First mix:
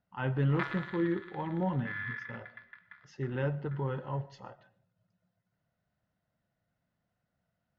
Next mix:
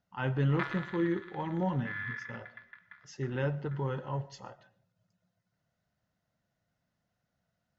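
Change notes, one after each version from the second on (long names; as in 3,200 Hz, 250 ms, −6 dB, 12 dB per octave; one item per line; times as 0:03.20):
speech: remove high-frequency loss of the air 160 metres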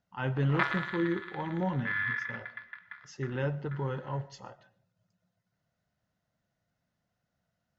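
background +7.0 dB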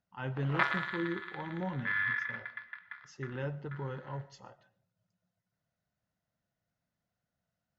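speech −5.5 dB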